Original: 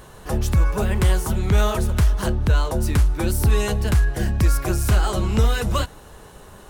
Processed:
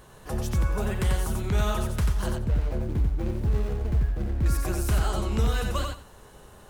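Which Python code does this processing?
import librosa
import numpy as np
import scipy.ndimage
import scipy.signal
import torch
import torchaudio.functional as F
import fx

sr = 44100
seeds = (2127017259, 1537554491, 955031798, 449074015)

y = fx.median_filter(x, sr, points=41, at=(2.29, 4.46))
y = fx.echo_feedback(y, sr, ms=90, feedback_pct=19, wet_db=-4)
y = y * 10.0 ** (-7.5 / 20.0)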